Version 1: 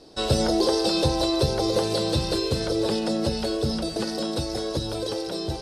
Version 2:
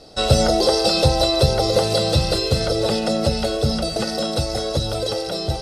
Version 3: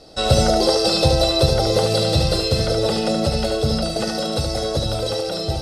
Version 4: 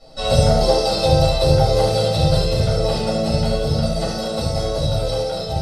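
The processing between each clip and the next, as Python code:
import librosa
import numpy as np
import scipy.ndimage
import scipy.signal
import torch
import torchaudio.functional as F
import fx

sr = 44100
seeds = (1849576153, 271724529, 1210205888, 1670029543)

y1 = x + 0.5 * np.pad(x, (int(1.5 * sr / 1000.0), 0))[:len(x)]
y1 = y1 * librosa.db_to_amplitude(5.0)
y2 = y1 + 10.0 ** (-5.0 / 20.0) * np.pad(y1, (int(73 * sr / 1000.0), 0))[:len(y1)]
y2 = y2 * librosa.db_to_amplitude(-1.0)
y3 = fx.room_shoebox(y2, sr, seeds[0], volume_m3=300.0, walls='furnished', distance_m=6.4)
y3 = y3 * librosa.db_to_amplitude(-11.5)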